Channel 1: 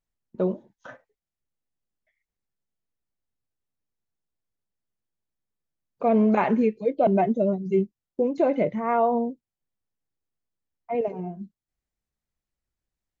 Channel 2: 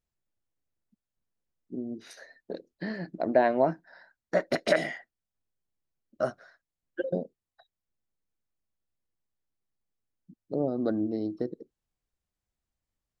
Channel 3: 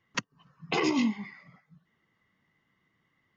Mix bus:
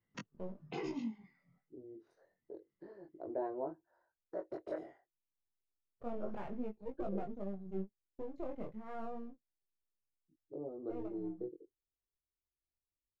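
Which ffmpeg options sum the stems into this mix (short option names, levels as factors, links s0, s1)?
-filter_complex "[0:a]aeval=exprs='if(lt(val(0),0),0.251*val(0),val(0))':c=same,volume=0.133[s0];[1:a]firequalizer=gain_entry='entry(110,0);entry(200,-18);entry(340,7);entry(640,-1);entry(1000,5);entry(2000,-12)':delay=0.05:min_phase=1,volume=0.168[s1];[2:a]bandreject=f=1100:w=12,volume=0.299,afade=t=out:st=0.65:d=0.51:silence=0.446684[s2];[s0][s1][s2]amix=inputs=3:normalize=0,flanger=delay=19.5:depth=3.6:speed=0.29,tiltshelf=f=770:g=5.5"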